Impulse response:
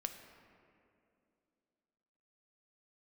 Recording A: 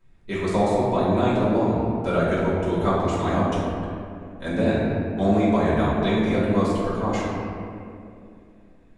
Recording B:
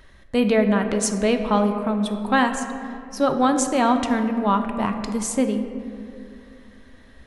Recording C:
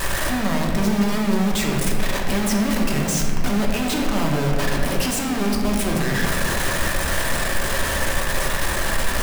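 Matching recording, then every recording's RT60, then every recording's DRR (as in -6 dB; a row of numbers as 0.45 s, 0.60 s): B; 2.6 s, 2.6 s, 2.6 s; -11.0 dB, 5.5 dB, -1.5 dB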